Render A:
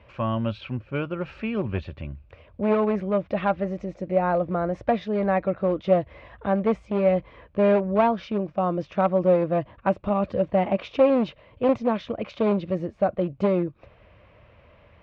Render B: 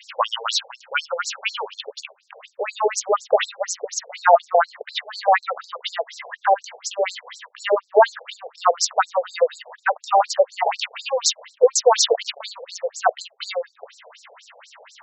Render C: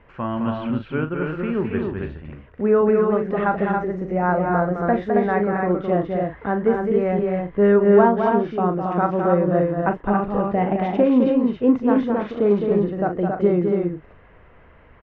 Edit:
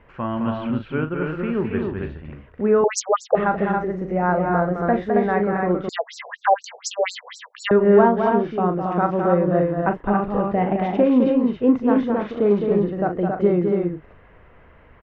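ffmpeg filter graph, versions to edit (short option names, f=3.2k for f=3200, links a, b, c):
-filter_complex "[1:a]asplit=2[a][b];[2:a]asplit=3[c][d][e];[c]atrim=end=2.842[f];[a]atrim=start=2.838:end=3.352[g];[d]atrim=start=3.348:end=5.892[h];[b]atrim=start=5.888:end=7.712[i];[e]atrim=start=7.708[j];[f][g]acrossfade=d=0.004:c1=hsin:c2=hsin[k];[k][h]acrossfade=d=0.004:c1=hsin:c2=hsin[l];[l][i]acrossfade=d=0.004:c1=hsin:c2=hsin[m];[m][j]acrossfade=d=0.004:c1=hsin:c2=hsin"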